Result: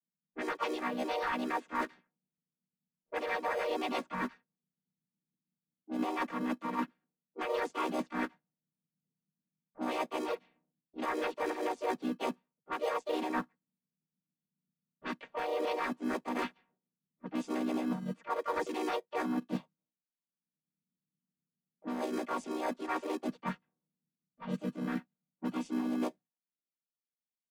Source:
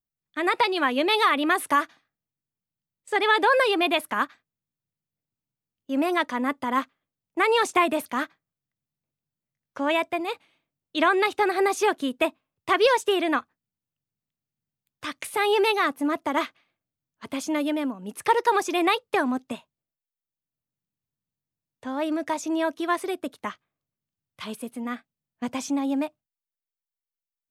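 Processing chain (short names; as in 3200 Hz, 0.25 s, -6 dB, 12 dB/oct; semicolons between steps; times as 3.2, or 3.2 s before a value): chord vocoder major triad, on B2; in parallel at -11.5 dB: sample-and-hold 31×; on the sum: low shelf 450 Hz -8.5 dB; comb 4.3 ms, depth 97%; reverse; compressor 6:1, threshold -33 dBFS, peak gain reduction 18 dB; reverse; high shelf 2900 Hz -5 dB; harmoniser -4 st -15 dB, +4 st -4 dB; low-pass opened by the level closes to 360 Hz, open at -33.5 dBFS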